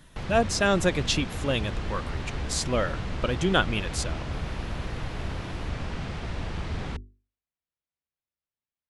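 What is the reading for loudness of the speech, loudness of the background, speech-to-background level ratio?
-27.5 LUFS, -34.5 LUFS, 7.0 dB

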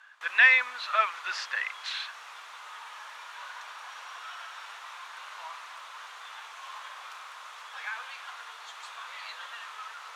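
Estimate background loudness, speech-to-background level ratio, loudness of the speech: -42.0 LUFS, 17.5 dB, -24.5 LUFS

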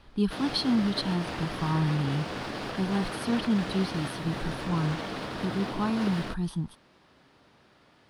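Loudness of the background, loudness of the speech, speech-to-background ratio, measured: -35.5 LUFS, -30.0 LUFS, 5.5 dB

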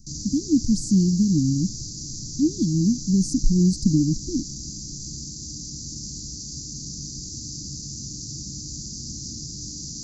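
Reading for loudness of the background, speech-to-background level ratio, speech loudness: -33.0 LUFS, 11.0 dB, -22.0 LUFS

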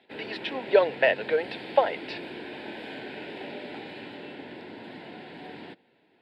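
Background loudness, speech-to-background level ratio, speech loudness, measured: -40.0 LUFS, 14.5 dB, -25.5 LUFS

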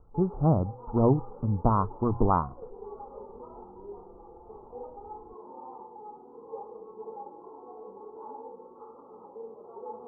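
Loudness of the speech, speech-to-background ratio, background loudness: -27.0 LUFS, 18.5 dB, -45.5 LUFS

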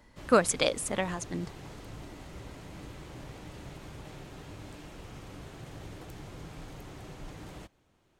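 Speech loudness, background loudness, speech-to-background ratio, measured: -28.5 LUFS, -46.5 LUFS, 18.0 dB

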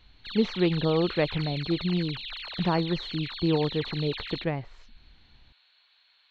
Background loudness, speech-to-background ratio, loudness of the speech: -36.5 LUFS, 8.0 dB, -28.5 LUFS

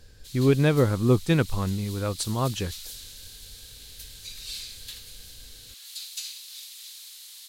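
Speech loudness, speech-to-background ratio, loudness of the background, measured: -24.5 LUFS, 15.0 dB, -39.5 LUFS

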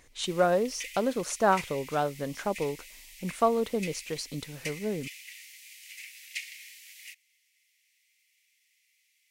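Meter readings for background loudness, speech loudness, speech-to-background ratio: -43.0 LUFS, -30.0 LUFS, 13.0 dB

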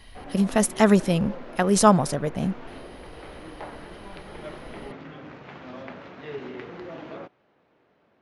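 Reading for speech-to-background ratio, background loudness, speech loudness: 19.0 dB, -41.0 LUFS, -22.0 LUFS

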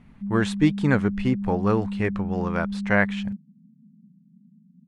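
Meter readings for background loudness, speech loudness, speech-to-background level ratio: -30.5 LUFS, -25.0 LUFS, 5.5 dB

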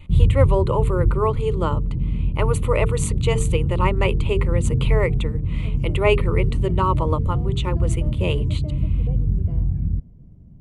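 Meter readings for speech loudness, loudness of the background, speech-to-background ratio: -25.0 LUFS, -22.5 LUFS, -2.5 dB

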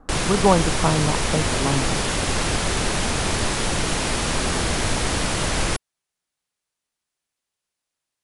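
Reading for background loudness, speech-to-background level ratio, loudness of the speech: -22.5 LUFS, -0.5 dB, -23.0 LUFS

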